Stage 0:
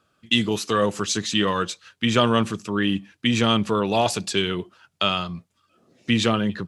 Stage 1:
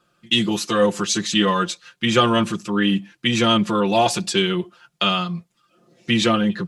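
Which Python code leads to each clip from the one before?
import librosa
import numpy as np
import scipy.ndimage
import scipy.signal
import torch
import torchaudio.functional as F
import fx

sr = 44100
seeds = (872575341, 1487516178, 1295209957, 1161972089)

y = x + 1.0 * np.pad(x, (int(5.7 * sr / 1000.0), 0))[:len(x)]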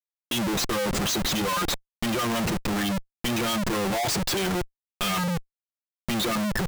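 y = fx.dereverb_blind(x, sr, rt60_s=0.82)
y = fx.spec_gate(y, sr, threshold_db=-15, keep='strong')
y = fx.schmitt(y, sr, flips_db=-34.5)
y = y * librosa.db_to_amplitude(-3.0)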